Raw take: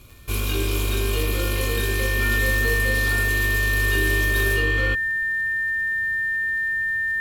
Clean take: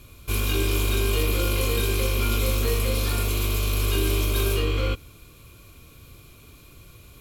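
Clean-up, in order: de-click; notch 1800 Hz, Q 30

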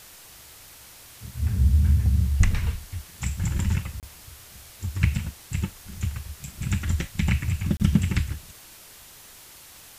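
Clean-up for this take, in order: interpolate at 4/7.77, 28 ms; noise print and reduce 21 dB

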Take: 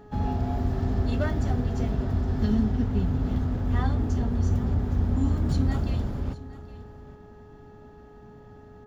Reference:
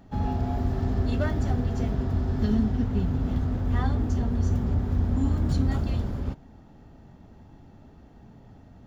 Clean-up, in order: de-hum 419.6 Hz, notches 4; inverse comb 0.814 s -17.5 dB

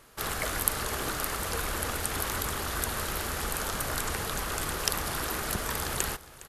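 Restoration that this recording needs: inverse comb 0.41 s -18.5 dB

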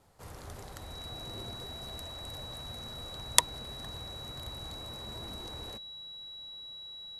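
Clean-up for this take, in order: notch 3900 Hz, Q 30

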